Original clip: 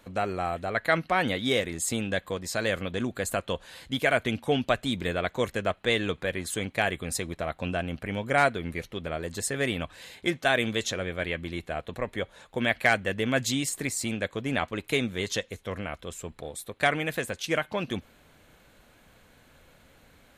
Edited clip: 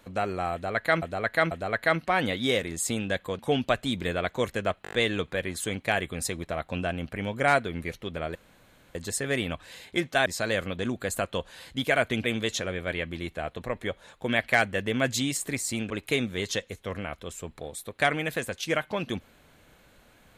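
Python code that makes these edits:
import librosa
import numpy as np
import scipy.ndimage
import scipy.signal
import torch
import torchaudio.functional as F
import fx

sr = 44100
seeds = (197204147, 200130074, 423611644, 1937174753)

y = fx.edit(x, sr, fx.repeat(start_s=0.53, length_s=0.49, count=3),
    fx.move(start_s=2.41, length_s=1.98, to_s=10.56),
    fx.stutter(start_s=5.83, slice_s=0.02, count=6),
    fx.insert_room_tone(at_s=9.25, length_s=0.6),
    fx.cut(start_s=14.22, length_s=0.49), tone=tone)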